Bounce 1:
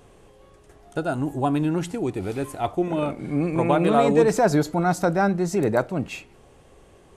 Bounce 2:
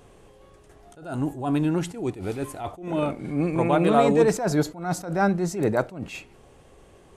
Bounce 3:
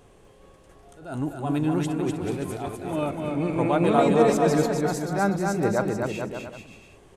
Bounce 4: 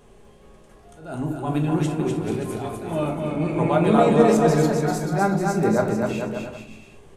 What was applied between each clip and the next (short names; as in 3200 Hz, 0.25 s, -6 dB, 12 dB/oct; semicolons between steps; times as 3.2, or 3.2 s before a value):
attack slew limiter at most 110 dB/s
bouncing-ball echo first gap 0.25 s, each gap 0.75×, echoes 5; gain -2 dB
shoebox room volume 280 m³, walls furnished, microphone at 1.3 m